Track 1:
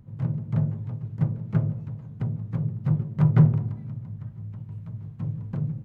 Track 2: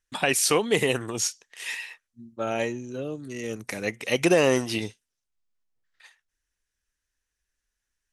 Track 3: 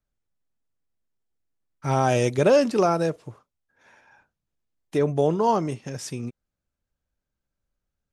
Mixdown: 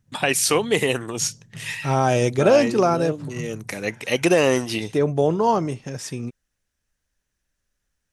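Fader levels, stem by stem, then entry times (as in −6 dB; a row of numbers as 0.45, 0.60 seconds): −17.0, +2.5, +2.0 decibels; 0.00, 0.00, 0.00 seconds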